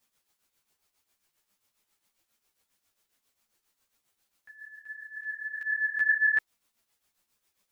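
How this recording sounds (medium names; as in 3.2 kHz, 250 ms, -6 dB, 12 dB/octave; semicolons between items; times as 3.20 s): a quantiser's noise floor 12-bit, dither triangular; tremolo triangle 7.4 Hz, depth 75%; a shimmering, thickened sound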